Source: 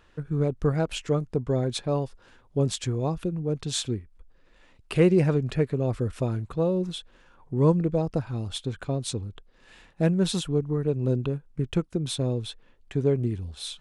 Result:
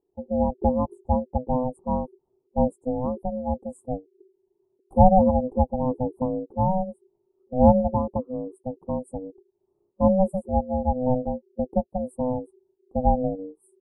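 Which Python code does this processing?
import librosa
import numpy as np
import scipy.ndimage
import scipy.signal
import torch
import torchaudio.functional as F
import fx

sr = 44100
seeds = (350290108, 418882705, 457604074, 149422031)

y = scipy.signal.sosfilt(scipy.signal.cheby2(4, 40, [1300.0, 6000.0], 'bandstop', fs=sr, output='sos'), x)
y = y * np.sin(2.0 * np.pi * 380.0 * np.arange(len(y)) / sr)
y = fx.spectral_expand(y, sr, expansion=1.5)
y = F.gain(torch.from_numpy(y), 7.5).numpy()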